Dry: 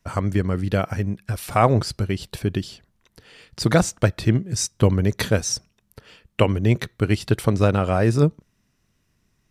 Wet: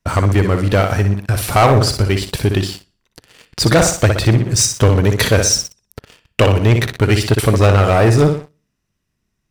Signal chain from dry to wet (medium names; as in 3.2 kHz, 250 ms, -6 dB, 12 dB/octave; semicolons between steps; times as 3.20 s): flutter echo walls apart 10.4 m, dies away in 0.44 s; dynamic bell 190 Hz, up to -7 dB, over -33 dBFS, Q 1.3; waveshaping leveller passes 3